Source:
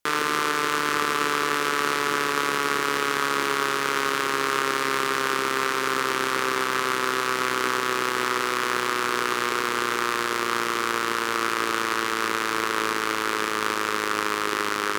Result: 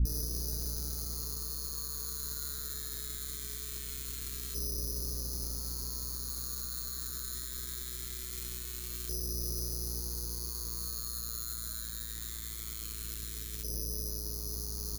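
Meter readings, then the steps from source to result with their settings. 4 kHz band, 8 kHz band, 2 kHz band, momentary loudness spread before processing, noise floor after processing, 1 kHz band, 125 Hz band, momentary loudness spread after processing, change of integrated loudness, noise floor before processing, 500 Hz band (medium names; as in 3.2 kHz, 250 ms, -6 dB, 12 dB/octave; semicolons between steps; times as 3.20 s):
-14.0 dB, -4.5 dB, -32.5 dB, 2 LU, -41 dBFS, -34.5 dB, +2.5 dB, 4 LU, -12.5 dB, -27 dBFS, -24.0 dB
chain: doubling 19 ms -9 dB; LFO low-pass saw up 0.22 Hz 530–3400 Hz; careless resampling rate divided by 8×, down filtered, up zero stuff; hum 60 Hz, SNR 17 dB; gain riding; plate-style reverb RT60 0.69 s, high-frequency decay 0.9×, DRR 12.5 dB; peak limiter -9 dBFS, peak gain reduction 21.5 dB; amplifier tone stack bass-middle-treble 10-0-1; trim +7.5 dB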